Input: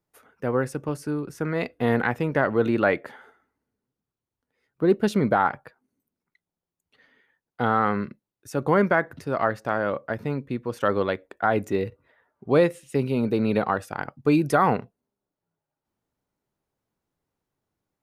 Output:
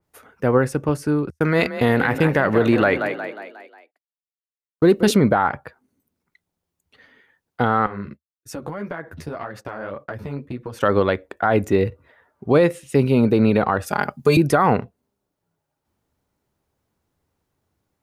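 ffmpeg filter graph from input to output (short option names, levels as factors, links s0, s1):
-filter_complex "[0:a]asettb=1/sr,asplit=3[s0][s1][s2];[s0]atrim=end=1.304[s3];[s1]atrim=start=1.3:end=5.16,asetpts=PTS-STARTPTS,afade=t=in:d=0.004:c=qsin,afade=t=out:st=3.856:d=0.004:c=qsin,agate=range=0.00398:threshold=0.0112:ratio=16:release=100:detection=peak,highshelf=f=2900:g=9.5,asplit=6[s4][s5][s6][s7][s8][s9];[s5]adelay=180,afreqshift=31,volume=0.251[s10];[s6]adelay=360,afreqshift=62,volume=0.123[s11];[s7]adelay=540,afreqshift=93,volume=0.0603[s12];[s8]adelay=720,afreqshift=124,volume=0.0295[s13];[s9]adelay=900,afreqshift=155,volume=0.0145[s14];[s4][s10][s11][s12][s13][s14]amix=inputs=6:normalize=0,atrim=end_sample=170226[s15];[s2]atrim=start=5.156[s16];[s3][s15]acrossfade=d=0.004:c1=hsin:c2=qsin[s17];[s17][s16]acrossfade=d=0.004:c1=qsin:c2=hsin,asettb=1/sr,asplit=3[s18][s19][s20];[s18]atrim=end=7.864[s21];[s19]atrim=start=7.86:end=10.79,asetpts=PTS-STARTPTS,afade=t=in:d=0.004:c=qsin,afade=t=out:st=2.926:d=0.004:c=qsin,agate=range=0.0224:threshold=0.00631:ratio=3:release=100:detection=peak,acompressor=threshold=0.0316:ratio=12:attack=3.2:release=140:knee=1:detection=peak,flanger=delay=5.1:depth=9.4:regen=-2:speed=1.8:shape=triangular[s22];[s20]atrim=start=10.786[s23];[s21][s22]acrossfade=d=0.004:c1=hsin:c2=qsin[s24];[s24][s23]acrossfade=d=0.004:c1=qsin:c2=hsin,asettb=1/sr,asplit=3[s25][s26][s27];[s25]atrim=end=13.864[s28];[s26]atrim=start=13.86:end=14.37,asetpts=PTS-STARTPTS,afade=t=in:d=0.004:c=qsin,afade=t=out:st=0.506:d=0.004:c=qsin,highpass=91,bass=f=250:g=0,treble=f=4000:g=10,aecho=1:1:4.9:0.92,atrim=end_sample=22491[s29];[s27]atrim=start=14.366[s30];[s28][s29]acrossfade=d=0.004:c1=hsin:c2=qsin[s31];[s31][s30]acrossfade=d=0.004:c1=qsin:c2=hsin,equalizer=f=78:w=2.6:g=8.5,alimiter=limit=0.211:level=0:latency=1:release=77,adynamicequalizer=threshold=0.00501:dfrequency=3400:dqfactor=0.7:tfrequency=3400:tqfactor=0.7:attack=5:release=100:ratio=0.375:range=2:mode=cutabove:tftype=highshelf,volume=2.37"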